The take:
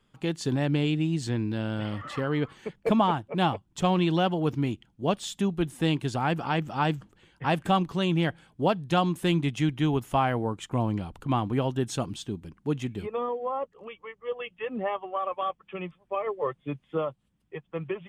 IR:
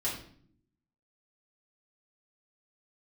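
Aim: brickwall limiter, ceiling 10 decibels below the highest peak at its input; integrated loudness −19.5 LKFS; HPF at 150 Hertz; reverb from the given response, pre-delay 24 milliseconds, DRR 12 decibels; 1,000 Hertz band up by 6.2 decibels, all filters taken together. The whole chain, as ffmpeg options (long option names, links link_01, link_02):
-filter_complex "[0:a]highpass=150,equalizer=frequency=1000:width_type=o:gain=8,alimiter=limit=-15dB:level=0:latency=1,asplit=2[link_01][link_02];[1:a]atrim=start_sample=2205,adelay=24[link_03];[link_02][link_03]afir=irnorm=-1:irlink=0,volume=-17dB[link_04];[link_01][link_04]amix=inputs=2:normalize=0,volume=9dB"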